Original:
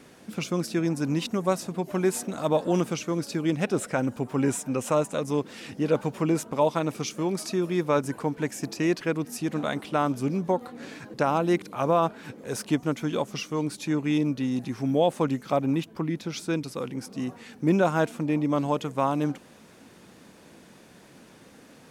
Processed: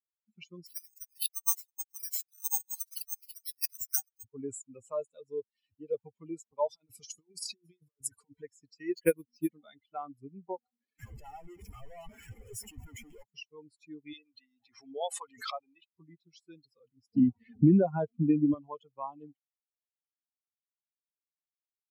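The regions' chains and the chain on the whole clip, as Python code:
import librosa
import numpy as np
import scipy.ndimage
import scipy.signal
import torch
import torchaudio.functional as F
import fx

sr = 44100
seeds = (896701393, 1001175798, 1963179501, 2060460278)

y = fx.chain(x, sr, fx.steep_highpass(hz=790.0, slope=72),
    fx.resample_bad(factor=6, down='none', up='zero_stuff'), at=(0.66, 4.24))
y = fx.chain(y, sr, fx.high_shelf(hz=3600.0, db=11.5),
    fx.over_compress(threshold_db=-30.0, ratio=-0.5), at=(6.67, 8.42))
y = fx.chain(y, sr, fx.high_shelf(hz=6400.0, db=6.0),
    fx.transient(attack_db=11, sustain_db=3),
    fx.resample_bad(factor=4, down='filtered', up='hold'), at=(8.95, 9.54))
y = fx.chain(y, sr, fx.clip_1bit(),
    fx.peak_eq(hz=4000.0, db=-12.0, octaves=0.53), at=(10.99, 13.23))
y = fx.chain(y, sr, fx.highpass(hz=780.0, slope=6),
    fx.peak_eq(hz=1100.0, db=5.5, octaves=1.5),
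    fx.pre_swell(db_per_s=39.0), at=(14.13, 15.87))
y = fx.chain(y, sr, fx.lowpass(hz=6900.0, slope=12),
    fx.low_shelf(hz=360.0, db=7.5),
    fx.band_squash(depth_pct=100), at=(17.13, 18.54))
y = fx.bin_expand(y, sr, power=3.0)
y = fx.peak_eq(y, sr, hz=1600.0, db=-11.0, octaves=1.8)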